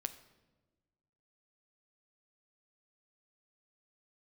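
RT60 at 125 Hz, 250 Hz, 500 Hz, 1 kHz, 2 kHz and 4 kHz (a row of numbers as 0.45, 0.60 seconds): 1.8, 1.6, 1.4, 1.1, 0.90, 0.80 seconds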